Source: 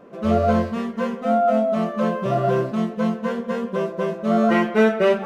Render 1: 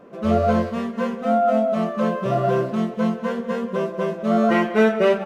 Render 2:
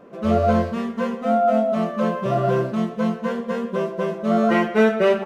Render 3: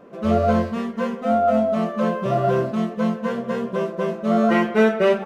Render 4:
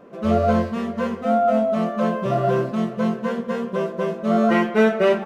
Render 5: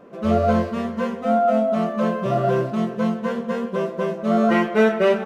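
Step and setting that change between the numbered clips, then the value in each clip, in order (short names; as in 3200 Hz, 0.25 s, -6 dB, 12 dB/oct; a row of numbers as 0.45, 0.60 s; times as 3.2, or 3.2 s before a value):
feedback echo, time: 0.189, 0.116, 1.055, 0.562, 0.361 s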